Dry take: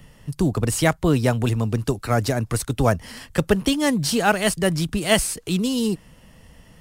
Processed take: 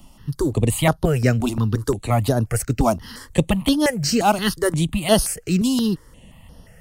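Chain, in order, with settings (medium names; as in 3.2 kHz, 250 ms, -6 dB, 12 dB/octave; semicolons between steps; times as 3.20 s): stepped phaser 5.7 Hz 470–7600 Hz; trim +4 dB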